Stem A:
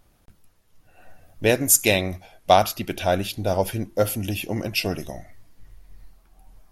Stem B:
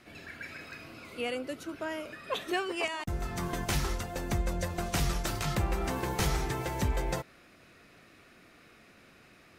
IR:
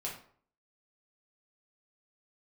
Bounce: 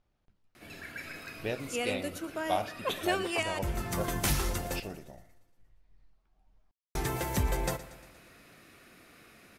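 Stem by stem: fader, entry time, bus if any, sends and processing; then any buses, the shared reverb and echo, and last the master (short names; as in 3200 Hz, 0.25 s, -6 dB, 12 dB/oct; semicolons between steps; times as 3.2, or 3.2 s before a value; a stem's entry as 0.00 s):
-17.0 dB, 0.00 s, send -10.5 dB, no echo send, LPF 4600 Hz 12 dB/oct
+0.5 dB, 0.55 s, muted 4.8–6.95, no send, echo send -16 dB, bell 12000 Hz +9 dB 0.92 oct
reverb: on, RT60 0.55 s, pre-delay 4 ms
echo: feedback echo 0.117 s, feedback 57%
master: dry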